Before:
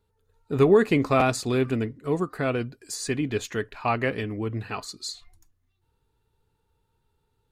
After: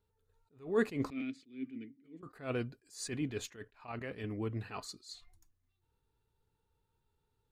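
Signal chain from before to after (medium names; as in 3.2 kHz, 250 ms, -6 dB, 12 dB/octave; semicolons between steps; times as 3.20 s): 1.10–2.23 s: vowel filter i; 3.56–4.24 s: level held to a coarse grid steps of 11 dB; attacks held to a fixed rise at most 170 dB/s; trim -7.5 dB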